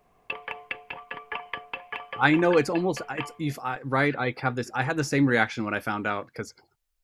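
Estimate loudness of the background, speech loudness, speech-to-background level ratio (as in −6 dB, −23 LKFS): −37.0 LKFS, −25.5 LKFS, 11.5 dB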